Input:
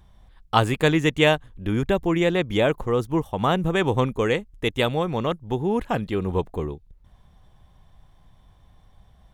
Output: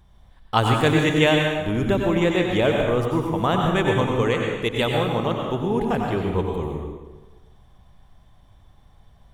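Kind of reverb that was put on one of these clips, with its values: plate-style reverb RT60 1.2 s, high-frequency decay 0.8×, pre-delay 80 ms, DRR 0.5 dB; trim -1 dB

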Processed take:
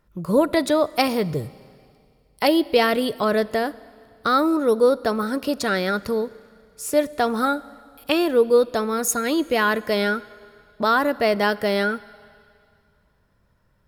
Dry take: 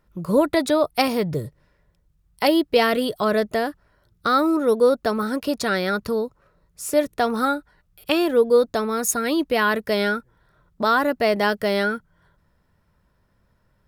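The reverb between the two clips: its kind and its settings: Schroeder reverb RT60 2.3 s, combs from 32 ms, DRR 19.5 dB

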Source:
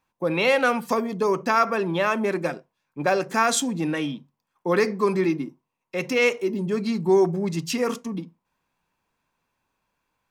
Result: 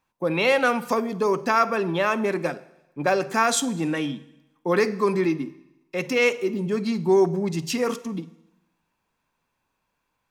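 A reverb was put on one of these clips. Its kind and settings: Schroeder reverb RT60 0.94 s, DRR 17 dB

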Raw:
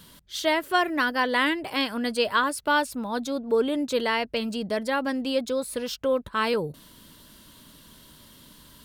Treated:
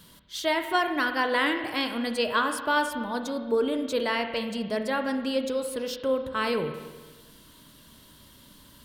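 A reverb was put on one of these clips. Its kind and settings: spring tank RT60 1.3 s, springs 30/46 ms, chirp 35 ms, DRR 6 dB; trim -2.5 dB

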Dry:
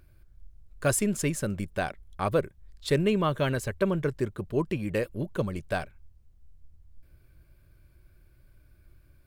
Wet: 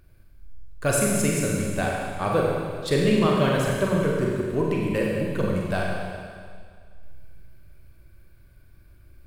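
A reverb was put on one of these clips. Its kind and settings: Schroeder reverb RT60 2 s, combs from 33 ms, DRR -2.5 dB; trim +1 dB

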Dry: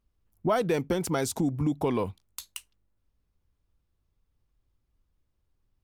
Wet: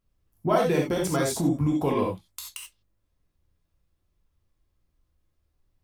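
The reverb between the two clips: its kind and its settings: gated-style reverb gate 110 ms flat, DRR -2 dB; trim -1 dB

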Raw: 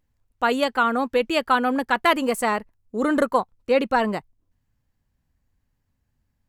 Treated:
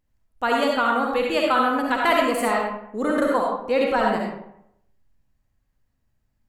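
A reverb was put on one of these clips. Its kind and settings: algorithmic reverb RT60 0.76 s, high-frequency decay 0.6×, pre-delay 25 ms, DRR -1.5 dB; trim -3 dB

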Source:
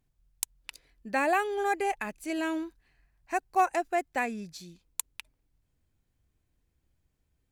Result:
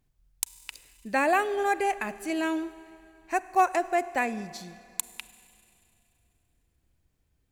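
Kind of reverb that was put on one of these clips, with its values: Schroeder reverb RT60 2.7 s, combs from 33 ms, DRR 15.5 dB; trim +2.5 dB

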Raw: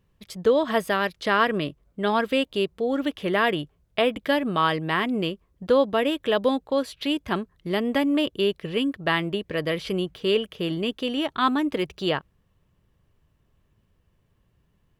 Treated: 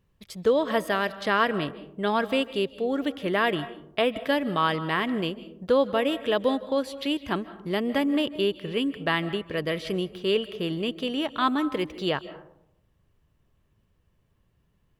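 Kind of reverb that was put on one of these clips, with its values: algorithmic reverb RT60 0.75 s, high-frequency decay 0.35×, pre-delay 115 ms, DRR 15 dB; trim -2 dB

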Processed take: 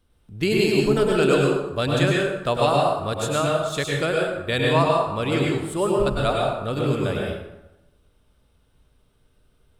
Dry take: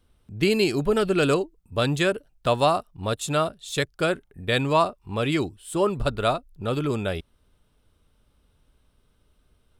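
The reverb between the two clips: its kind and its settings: plate-style reverb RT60 0.95 s, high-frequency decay 0.65×, pre-delay 90 ms, DRR -2 dB; trim -1.5 dB

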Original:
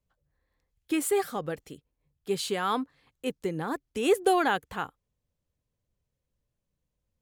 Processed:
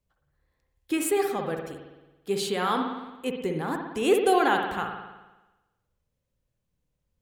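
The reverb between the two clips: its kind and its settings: spring tank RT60 1.1 s, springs 55 ms, chirp 40 ms, DRR 3 dB; trim +1 dB

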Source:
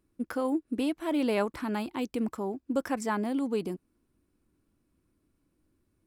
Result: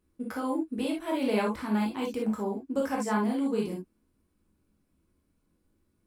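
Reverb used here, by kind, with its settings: gated-style reverb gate 90 ms flat, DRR -2.5 dB; trim -3.5 dB

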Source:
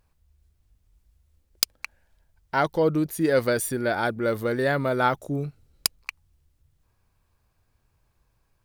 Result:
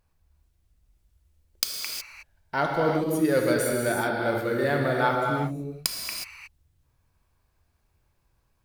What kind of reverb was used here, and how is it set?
gated-style reverb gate 390 ms flat, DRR -0.5 dB; trim -3.5 dB

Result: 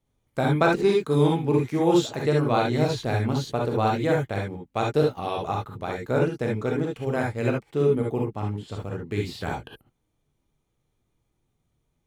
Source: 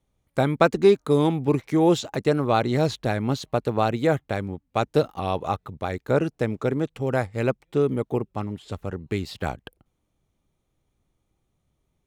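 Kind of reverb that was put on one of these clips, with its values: gated-style reverb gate 90 ms rising, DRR -1 dB; trim -4 dB

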